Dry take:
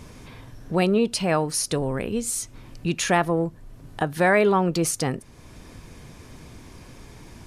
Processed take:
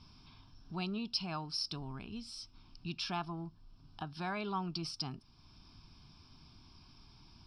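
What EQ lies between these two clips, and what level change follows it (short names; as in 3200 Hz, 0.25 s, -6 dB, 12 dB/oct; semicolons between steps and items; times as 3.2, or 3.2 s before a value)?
ladder low-pass 5500 Hz, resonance 85%; notches 60/120 Hz; fixed phaser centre 1900 Hz, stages 6; -1.0 dB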